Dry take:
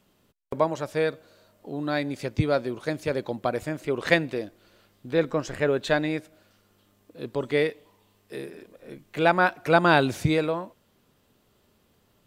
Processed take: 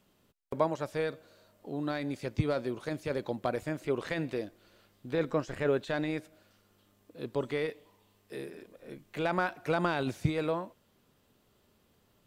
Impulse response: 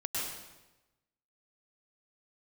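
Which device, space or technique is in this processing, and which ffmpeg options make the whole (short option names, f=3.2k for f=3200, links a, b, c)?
de-esser from a sidechain: -filter_complex "[0:a]asplit=2[a][b];[b]highpass=6.7k,apad=whole_len=540948[c];[a][c]sidechaincompress=threshold=-53dB:ratio=3:attack=2.5:release=23,volume=-3.5dB"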